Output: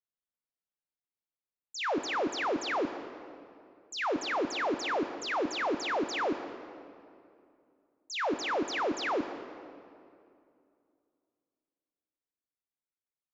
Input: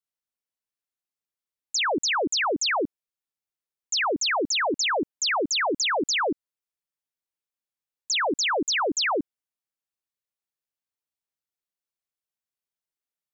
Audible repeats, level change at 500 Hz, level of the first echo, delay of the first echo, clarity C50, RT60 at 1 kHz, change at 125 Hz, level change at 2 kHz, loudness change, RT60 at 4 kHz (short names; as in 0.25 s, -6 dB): none, -4.0 dB, none, none, 9.5 dB, 2.4 s, -4.0 dB, -8.0 dB, -8.0 dB, 1.6 s